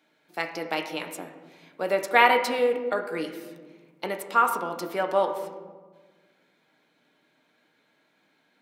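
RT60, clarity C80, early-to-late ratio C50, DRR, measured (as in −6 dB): 1.4 s, 10.5 dB, 8.5 dB, 3.5 dB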